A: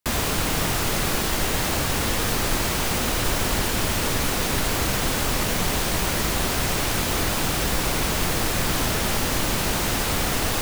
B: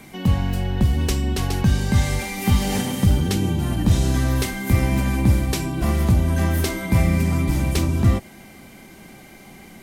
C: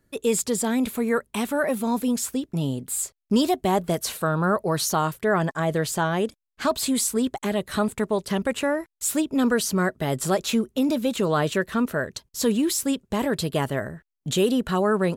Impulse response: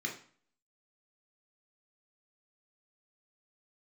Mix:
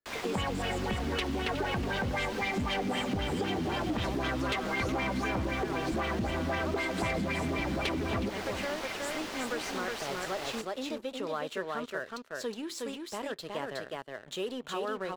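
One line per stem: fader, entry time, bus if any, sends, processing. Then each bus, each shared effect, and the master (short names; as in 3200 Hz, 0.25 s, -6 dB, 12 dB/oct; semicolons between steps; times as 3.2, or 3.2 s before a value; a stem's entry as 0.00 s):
-20.0 dB, 0.00 s, no send, echo send -15 dB, dry
+0.5 dB, 0.10 s, no send, echo send -15.5 dB, flange 1.9 Hz, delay 1.7 ms, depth 3.5 ms, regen +80%; LFO low-pass sine 3.9 Hz 230–3300 Hz
-17.0 dB, 0.00 s, send -20.5 dB, echo send -3 dB, dry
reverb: on, RT60 0.45 s, pre-delay 3 ms
echo: echo 0.366 s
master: three-band isolator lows -15 dB, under 350 Hz, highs -15 dB, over 6200 Hz; sample leveller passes 2; compressor, threshold -29 dBFS, peak gain reduction 8.5 dB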